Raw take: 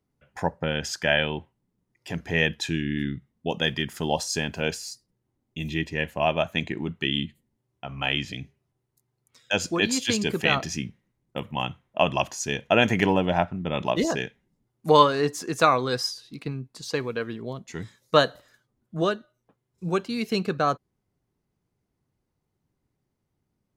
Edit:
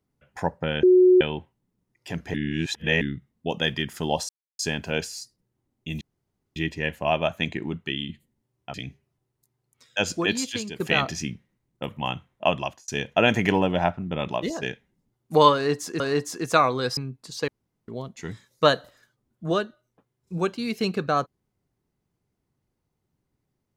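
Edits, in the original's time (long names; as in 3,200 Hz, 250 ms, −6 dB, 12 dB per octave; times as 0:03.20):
0:00.83–0:01.21: beep over 366 Hz −11.5 dBFS
0:02.34–0:03.01: reverse
0:04.29: splice in silence 0.30 s
0:05.71: splice in room tone 0.55 s
0:06.85–0:07.24: fade out, to −7 dB
0:07.89–0:08.28: remove
0:09.77–0:10.34: fade out, to −14.5 dB
0:12.00–0:12.42: fade out
0:13.70–0:14.16: fade out, to −8.5 dB
0:15.08–0:15.54: repeat, 2 plays
0:16.05–0:16.48: remove
0:16.99–0:17.39: fill with room tone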